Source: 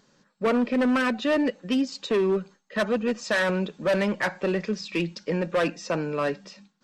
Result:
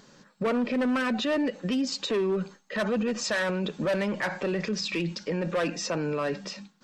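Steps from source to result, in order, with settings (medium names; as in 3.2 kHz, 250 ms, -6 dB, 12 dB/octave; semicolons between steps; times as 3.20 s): peak limiter -29 dBFS, peak gain reduction 11.5 dB; trim +7.5 dB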